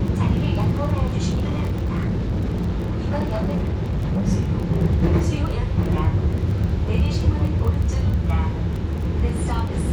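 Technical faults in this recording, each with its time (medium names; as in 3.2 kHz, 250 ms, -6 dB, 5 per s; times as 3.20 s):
crackle 20 per s -26 dBFS
1.29–4.28 s: clipped -18.5 dBFS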